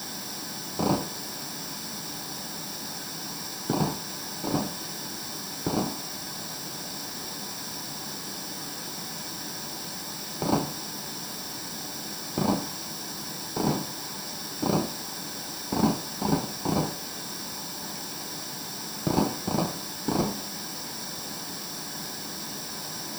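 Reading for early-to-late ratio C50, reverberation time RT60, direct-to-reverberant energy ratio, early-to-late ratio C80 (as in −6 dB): 13.5 dB, 0.45 s, 4.5 dB, 17.5 dB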